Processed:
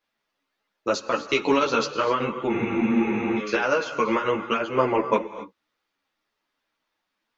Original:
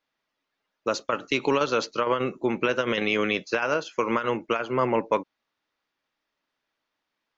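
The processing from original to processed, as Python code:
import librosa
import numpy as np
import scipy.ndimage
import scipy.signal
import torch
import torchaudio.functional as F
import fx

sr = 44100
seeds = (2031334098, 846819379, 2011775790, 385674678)

y = fx.rev_gated(x, sr, seeds[0], gate_ms=290, shape='rising', drr_db=11.0)
y = fx.spec_freeze(y, sr, seeds[1], at_s=2.52, hold_s=0.86)
y = fx.ensemble(y, sr)
y = F.gain(torch.from_numpy(y), 5.0).numpy()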